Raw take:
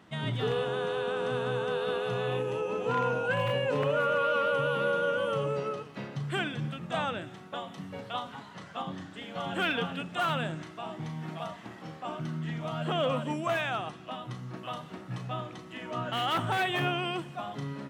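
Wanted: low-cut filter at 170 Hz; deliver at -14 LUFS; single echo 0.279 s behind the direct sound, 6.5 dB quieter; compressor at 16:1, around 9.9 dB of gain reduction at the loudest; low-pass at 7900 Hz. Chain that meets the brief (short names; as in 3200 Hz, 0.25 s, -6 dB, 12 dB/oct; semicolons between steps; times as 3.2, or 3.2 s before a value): HPF 170 Hz; LPF 7900 Hz; compressor 16:1, threshold -34 dBFS; echo 0.279 s -6.5 dB; gain +24 dB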